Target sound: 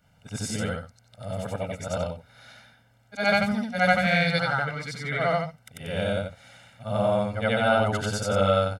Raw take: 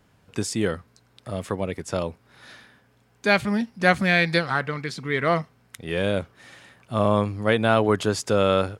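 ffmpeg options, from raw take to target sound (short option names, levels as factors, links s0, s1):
-af "afftfilt=real='re':imag='-im':win_size=8192:overlap=0.75,aecho=1:1:1.4:0.88"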